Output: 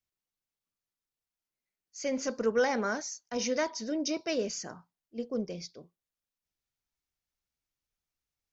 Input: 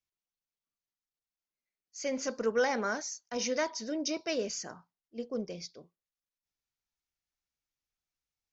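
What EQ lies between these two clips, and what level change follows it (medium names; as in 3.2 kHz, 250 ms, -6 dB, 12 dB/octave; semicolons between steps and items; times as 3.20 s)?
bass shelf 360 Hz +4.5 dB; 0.0 dB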